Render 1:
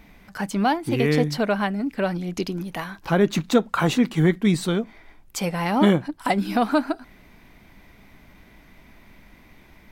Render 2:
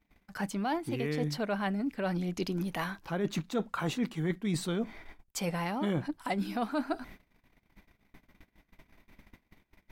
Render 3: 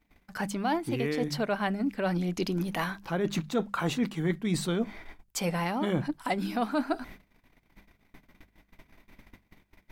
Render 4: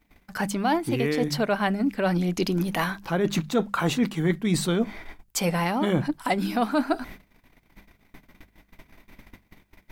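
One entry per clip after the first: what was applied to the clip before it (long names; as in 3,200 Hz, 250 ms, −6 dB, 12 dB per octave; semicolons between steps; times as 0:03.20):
noise gate −46 dBFS, range −30 dB; reversed playback; downward compressor 5 to 1, threshold −30 dBFS, peak gain reduction 16 dB; reversed playback
mains-hum notches 50/100/150/200 Hz; level +3.5 dB
high-shelf EQ 9,700 Hz +3.5 dB; level +5 dB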